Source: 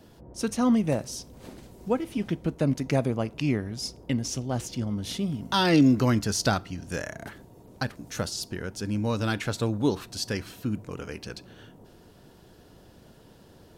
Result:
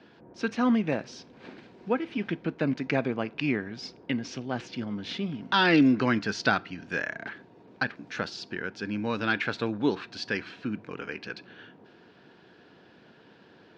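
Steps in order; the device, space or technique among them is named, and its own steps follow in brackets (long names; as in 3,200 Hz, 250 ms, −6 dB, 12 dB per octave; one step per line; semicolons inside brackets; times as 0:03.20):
kitchen radio (loudspeaker in its box 200–4,400 Hz, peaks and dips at 580 Hz −4 dB, 1,600 Hz +8 dB, 2,400 Hz +6 dB)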